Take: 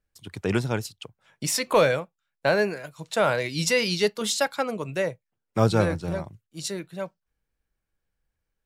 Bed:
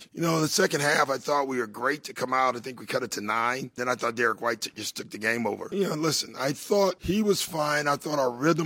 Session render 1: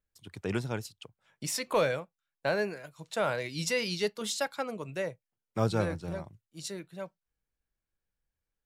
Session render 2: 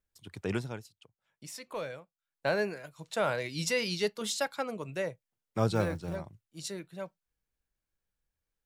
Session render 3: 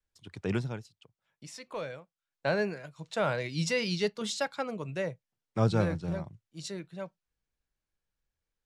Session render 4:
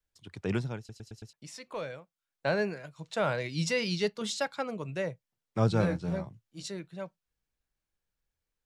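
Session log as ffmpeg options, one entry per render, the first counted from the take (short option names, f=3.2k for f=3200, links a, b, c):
-af "volume=-7.5dB"
-filter_complex "[0:a]asettb=1/sr,asplit=3[a][b][c];[a]atrim=end=5.754[d];[b]atrim=start=5.75:end=6.16,asetpts=PTS-STARTPTS,afade=t=in:d=0.004:c=qsin,afade=t=out:st=0.406:d=0.004:c=qsin,acrusher=bits=8:mode=log:mix=0:aa=0.000001[e];[c]atrim=start=6.156[f];[d][e]acrossfade=d=0.004:c1=hsin:c2=qsin[g];[g][f]acrossfade=d=0.004:c1=qsin:c2=hsin,asplit=3[h][i][j];[h]atrim=end=0.84,asetpts=PTS-STARTPTS,afade=t=out:st=0.51:d=0.33:silence=0.281838[k];[i]atrim=start=0.84:end=2.14,asetpts=PTS-STARTPTS,volume=-11dB[l];[j]atrim=start=2.14,asetpts=PTS-STARTPTS,afade=t=in:d=0.33:silence=0.281838[m];[k][l][m]concat=n=3:v=0:a=1"
-af "lowpass=7.2k,adynamicequalizer=threshold=0.00501:dfrequency=150:dqfactor=1.3:tfrequency=150:tqfactor=1.3:attack=5:release=100:ratio=0.375:range=3:mode=boostabove:tftype=bell"
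-filter_complex "[0:a]asettb=1/sr,asplit=3[a][b][c];[a]atrim=end=5.814[d];[b]atrim=start=5.81:end=6.63,asetpts=PTS-STARTPTS,afade=t=in:d=0.004:c=qsin,afade=t=out:st=0.816:d=0.004:c=qsin,asplit=2[e][f];[f]adelay=16,volume=-5dB[g];[e][g]amix=inputs=2:normalize=0,atrim=end_sample=36162[h];[c]atrim=start=6.626[i];[d][h]acrossfade=d=0.004:c1=hsin:c2=qsin[j];[j][i]acrossfade=d=0.004:c1=qsin:c2=hsin,asplit=6[k][l][m][n][o][p];[k]atrim=end=0.892[q];[l]atrim=start=0.778:end=0.892[r];[m]atrim=start=0.778:end=0.892[s];[n]atrim=start=0.778:end=0.892[t];[o]atrim=start=0.778:end=0.892[u];[p]atrim=start=1.328[v];[q][r]acrossfade=d=0.004:c1=hsin:c2=hsin[w];[w][s]acrossfade=d=0.004:c1=hsin:c2=hsin[x];[x][t]acrossfade=d=0.004:c1=hsin:c2=hsin[y];[y][u]acrossfade=d=0.004:c1=hsin:c2=hsin[z];[z][v]acrossfade=d=0.004:c1=hsin:c2=hsin"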